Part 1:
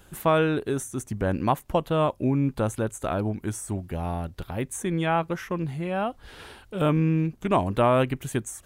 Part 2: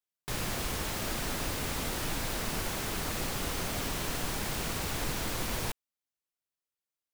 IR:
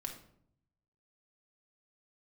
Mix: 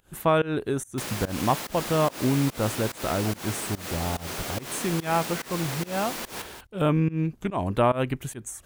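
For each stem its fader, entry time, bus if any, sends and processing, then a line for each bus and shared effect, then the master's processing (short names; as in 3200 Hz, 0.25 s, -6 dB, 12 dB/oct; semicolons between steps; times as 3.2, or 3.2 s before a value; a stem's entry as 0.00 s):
0.0 dB, 0.00 s, no send, no echo send, dry
+1.5 dB, 0.70 s, no send, echo send -10.5 dB, HPF 220 Hz 12 dB/oct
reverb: off
echo: echo 0.189 s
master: pump 144 bpm, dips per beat 1, -23 dB, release 0.182 s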